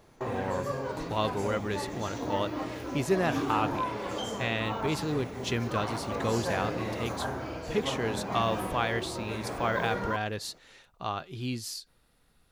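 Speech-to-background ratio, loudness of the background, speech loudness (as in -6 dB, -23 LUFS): 2.0 dB, -35.0 LUFS, -33.0 LUFS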